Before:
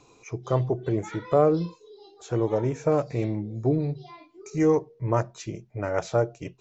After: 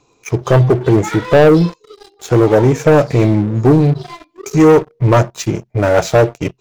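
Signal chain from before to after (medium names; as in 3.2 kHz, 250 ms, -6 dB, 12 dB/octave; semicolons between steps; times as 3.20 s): waveshaping leveller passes 3; trim +6 dB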